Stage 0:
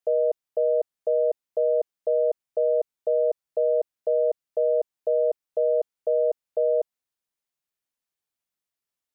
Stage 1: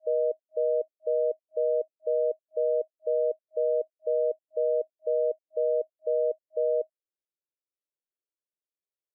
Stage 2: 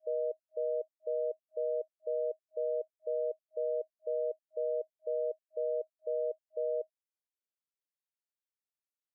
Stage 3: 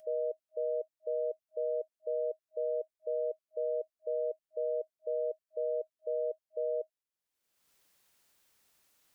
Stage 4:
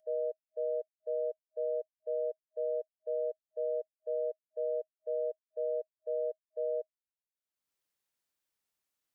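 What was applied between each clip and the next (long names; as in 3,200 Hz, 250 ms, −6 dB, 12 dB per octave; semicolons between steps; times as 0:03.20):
brick-wall band-pass 300–630 Hz; level −3.5 dB
high-pass filter 310 Hz; level −7 dB
upward compression, threshold −50 dBFS
expander for the loud parts 2.5 to 1, over −43 dBFS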